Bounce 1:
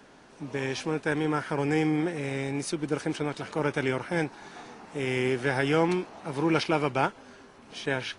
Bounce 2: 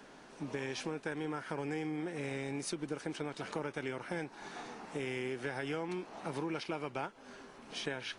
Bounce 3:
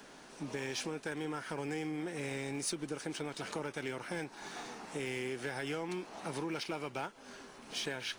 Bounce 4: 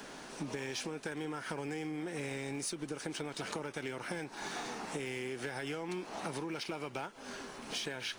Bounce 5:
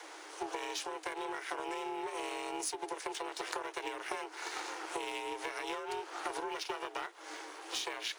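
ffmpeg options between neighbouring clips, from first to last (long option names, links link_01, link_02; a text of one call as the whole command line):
ffmpeg -i in.wav -af "equalizer=frequency=84:width=1.2:gain=-7,acompressor=threshold=-34dB:ratio=6,volume=-1dB" out.wav
ffmpeg -i in.wav -filter_complex "[0:a]highshelf=frequency=3700:gain=8,acrossover=split=1600[link_01][link_02];[link_02]acrusher=bits=5:mode=log:mix=0:aa=0.000001[link_03];[link_01][link_03]amix=inputs=2:normalize=0,asoftclip=type=tanh:threshold=-26.5dB" out.wav
ffmpeg -i in.wav -af "acompressor=threshold=-42dB:ratio=6,volume=6dB" out.wav
ffmpeg -i in.wav -af "aeval=exprs='val(0)*sin(2*PI*250*n/s)':channel_layout=same,afreqshift=300,aeval=exprs='0.075*(cos(1*acos(clip(val(0)/0.075,-1,1)))-cos(1*PI/2))+0.00422*(cos(7*acos(clip(val(0)/0.075,-1,1)))-cos(7*PI/2))':channel_layout=same,volume=6dB" out.wav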